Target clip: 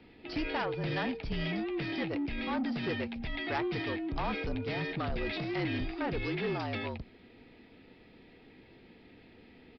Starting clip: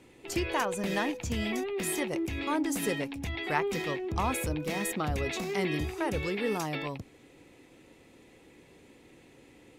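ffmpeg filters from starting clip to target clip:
ffmpeg -i in.wav -af "bandreject=frequency=1100:width=12,afreqshift=-45,aresample=11025,asoftclip=type=tanh:threshold=-27dB,aresample=44100" out.wav

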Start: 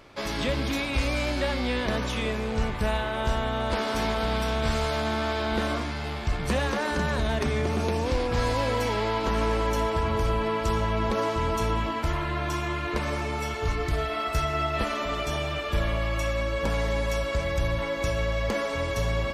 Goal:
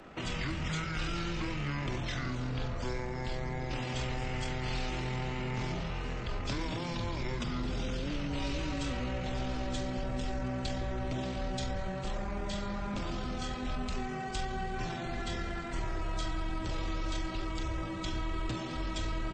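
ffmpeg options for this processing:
ffmpeg -i in.wav -filter_complex "[0:a]lowshelf=frequency=300:gain=-4.5,asplit=2[link_01][link_02];[link_02]adelay=37,volume=-8dB[link_03];[link_01][link_03]amix=inputs=2:normalize=0,acrossover=split=450|4700[link_04][link_05][link_06];[link_04]asoftclip=type=hard:threshold=-34.5dB[link_07];[link_07][link_05][link_06]amix=inputs=3:normalize=0,asetrate=25476,aresample=44100,atempo=1.73107,acrossover=split=180|3000[link_08][link_09][link_10];[link_09]acompressor=threshold=-46dB:ratio=3[link_11];[link_08][link_11][link_10]amix=inputs=3:normalize=0,volume=2.5dB" out.wav

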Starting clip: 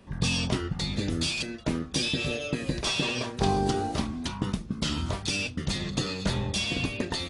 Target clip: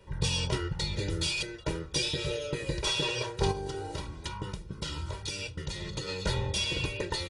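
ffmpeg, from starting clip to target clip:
ffmpeg -i in.wav -filter_complex "[0:a]aecho=1:1:2.1:1,asplit=3[link_01][link_02][link_03];[link_01]afade=type=out:start_time=3.51:duration=0.02[link_04];[link_02]acompressor=threshold=-28dB:ratio=6,afade=type=in:start_time=3.51:duration=0.02,afade=type=out:start_time=6.07:duration=0.02[link_05];[link_03]afade=type=in:start_time=6.07:duration=0.02[link_06];[link_04][link_05][link_06]amix=inputs=3:normalize=0,volume=-4.5dB" out.wav

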